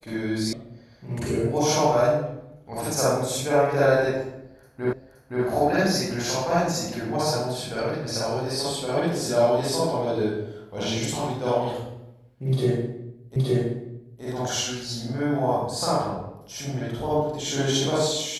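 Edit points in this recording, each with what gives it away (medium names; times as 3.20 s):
0.53 s: sound stops dead
4.93 s: repeat of the last 0.52 s
13.36 s: repeat of the last 0.87 s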